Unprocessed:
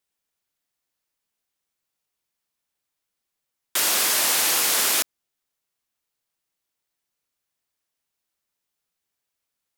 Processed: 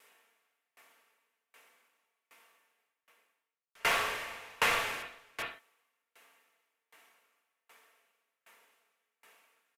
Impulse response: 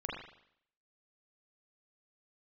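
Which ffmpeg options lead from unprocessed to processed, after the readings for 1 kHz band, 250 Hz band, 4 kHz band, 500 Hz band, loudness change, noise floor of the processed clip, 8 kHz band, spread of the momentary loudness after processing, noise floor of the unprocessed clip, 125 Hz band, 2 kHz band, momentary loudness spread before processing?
−3.5 dB, −11.0 dB, −14.0 dB, −5.0 dB, −13.5 dB, below −85 dBFS, −23.5 dB, 14 LU, −83 dBFS, can't be measured, −4.5 dB, 7 LU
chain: -filter_complex "[0:a]highpass=400,acrossover=split=5100[link_01][link_02];[link_02]acompressor=threshold=-31dB:ratio=4:attack=1:release=60[link_03];[link_01][link_03]amix=inputs=2:normalize=0,highshelf=frequency=3100:width_type=q:width=1.5:gain=-6.5,aecho=1:1:4.4:0.45,areverse,acompressor=mode=upward:threshold=-44dB:ratio=2.5,areverse,asoftclip=type=hard:threshold=-29.5dB,aecho=1:1:398:0.355[link_04];[1:a]atrim=start_sample=2205,afade=type=out:start_time=0.22:duration=0.01,atrim=end_sample=10143[link_05];[link_04][link_05]afir=irnorm=-1:irlink=0,aresample=32000,aresample=44100,aeval=exprs='val(0)*pow(10,-32*if(lt(mod(1.3*n/s,1),2*abs(1.3)/1000),1-mod(1.3*n/s,1)/(2*abs(1.3)/1000),(mod(1.3*n/s,1)-2*abs(1.3)/1000)/(1-2*abs(1.3)/1000))/20)':channel_layout=same,volume=4.5dB"

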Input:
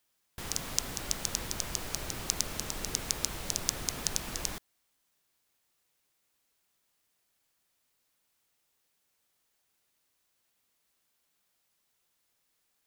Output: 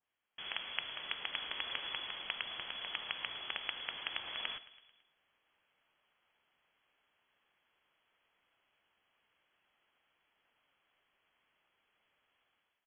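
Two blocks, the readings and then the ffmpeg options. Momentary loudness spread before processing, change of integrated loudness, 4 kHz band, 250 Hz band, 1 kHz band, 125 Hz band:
5 LU, −6.5 dB, −1.0 dB, −18.0 dB, −3.5 dB, −23.5 dB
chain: -filter_complex "[0:a]dynaudnorm=framelen=170:gausssize=5:maxgain=11dB,flanger=delay=1:depth=6.9:regen=-88:speed=1.6:shape=sinusoidal,aeval=exprs='0.562*(cos(1*acos(clip(val(0)/0.562,-1,1)))-cos(1*PI/2))+0.224*(cos(2*acos(clip(val(0)/0.562,-1,1)))-cos(2*PI/2))+0.0891*(cos(6*acos(clip(val(0)/0.562,-1,1)))-cos(6*PI/2))':channel_layout=same,asplit=2[link_01][link_02];[link_02]aecho=0:1:110|220|330|440|550:0.126|0.0692|0.0381|0.0209|0.0115[link_03];[link_01][link_03]amix=inputs=2:normalize=0,lowpass=frequency=2900:width_type=q:width=0.5098,lowpass=frequency=2900:width_type=q:width=0.6013,lowpass=frequency=2900:width_type=q:width=0.9,lowpass=frequency=2900:width_type=q:width=2.563,afreqshift=-3400,adynamicequalizer=threshold=0.00447:dfrequency=1800:dqfactor=0.7:tfrequency=1800:tqfactor=0.7:attack=5:release=100:ratio=0.375:range=2:mode=cutabove:tftype=highshelf"

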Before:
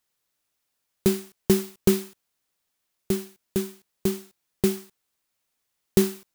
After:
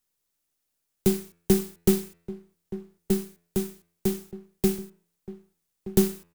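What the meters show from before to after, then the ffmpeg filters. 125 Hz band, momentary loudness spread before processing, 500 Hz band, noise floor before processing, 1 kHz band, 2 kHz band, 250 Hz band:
0.0 dB, 10 LU, −1.5 dB, −79 dBFS, −1.0 dB, −4.0 dB, 0.0 dB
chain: -filter_complex "[0:a]bandreject=frequency=85.6:width_type=h:width=4,bandreject=frequency=171.2:width_type=h:width=4,bandreject=frequency=256.8:width_type=h:width=4,bandreject=frequency=342.4:width_type=h:width=4,bandreject=frequency=428:width_type=h:width=4,bandreject=frequency=513.6:width_type=h:width=4,bandreject=frequency=599.2:width_type=h:width=4,bandreject=frequency=684.8:width_type=h:width=4,bandreject=frequency=770.4:width_type=h:width=4,bandreject=frequency=856:width_type=h:width=4,bandreject=frequency=941.6:width_type=h:width=4,bandreject=frequency=1027.2:width_type=h:width=4,bandreject=frequency=1112.8:width_type=h:width=4,bandreject=frequency=1198.4:width_type=h:width=4,bandreject=frequency=1284:width_type=h:width=4,bandreject=frequency=1369.6:width_type=h:width=4,bandreject=frequency=1455.2:width_type=h:width=4,bandreject=frequency=1540.8:width_type=h:width=4,bandreject=frequency=1626.4:width_type=h:width=4,bandreject=frequency=1712:width_type=h:width=4,bandreject=frequency=1797.6:width_type=h:width=4,bandreject=frequency=1883.2:width_type=h:width=4,bandreject=frequency=1968.8:width_type=h:width=4,bandreject=frequency=2054.4:width_type=h:width=4,bandreject=frequency=2140:width_type=h:width=4,bandreject=frequency=2225.6:width_type=h:width=4,bandreject=frequency=2311.2:width_type=h:width=4,bandreject=frequency=2396.8:width_type=h:width=4,bandreject=frequency=2482.4:width_type=h:width=4,bandreject=frequency=2568:width_type=h:width=4,bandreject=frequency=2653.6:width_type=h:width=4,acrossover=split=210|450|5900[link_01][link_02][link_03][link_04];[link_03]aeval=exprs='max(val(0),0)':channel_layout=same[link_05];[link_01][link_02][link_05][link_04]amix=inputs=4:normalize=0,asplit=2[link_06][link_07];[link_07]adelay=1224,volume=-14dB,highshelf=frequency=4000:gain=-27.6[link_08];[link_06][link_08]amix=inputs=2:normalize=0"

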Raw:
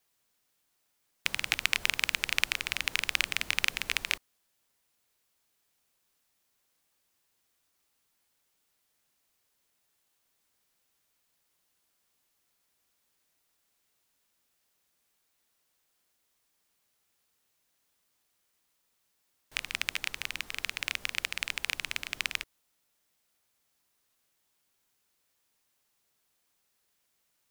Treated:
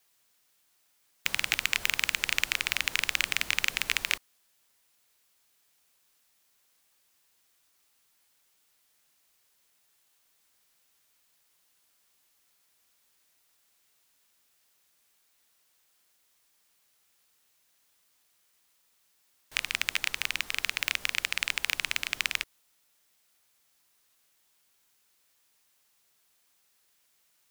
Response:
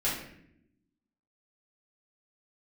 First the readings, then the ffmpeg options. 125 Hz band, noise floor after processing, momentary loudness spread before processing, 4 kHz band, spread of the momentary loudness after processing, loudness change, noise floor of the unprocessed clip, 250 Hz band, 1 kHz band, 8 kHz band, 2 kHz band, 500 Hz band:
+0.5 dB, −70 dBFS, 7 LU, +2.0 dB, 5 LU, +2.5 dB, −76 dBFS, +0.5 dB, +2.0 dB, +3.5 dB, +2.5 dB, +0.5 dB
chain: -af "tiltshelf=frequency=790:gain=-3,apsyclip=12.5dB,volume=-9dB"

